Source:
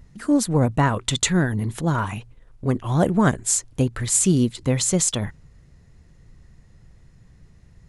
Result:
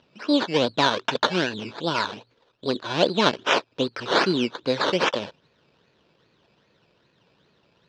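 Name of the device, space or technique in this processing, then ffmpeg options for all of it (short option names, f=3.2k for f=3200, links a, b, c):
circuit-bent sampling toy: -af "acrusher=samples=14:mix=1:aa=0.000001:lfo=1:lforange=8.4:lforate=2.5,highpass=440,equalizer=f=760:t=q:w=4:g=-7,equalizer=f=1.2k:t=q:w=4:g=-5,equalizer=f=2k:t=q:w=4:g=-9,equalizer=f=3.7k:t=q:w=4:g=3,lowpass=f=4.7k:w=0.5412,lowpass=f=4.7k:w=1.3066,volume=5dB"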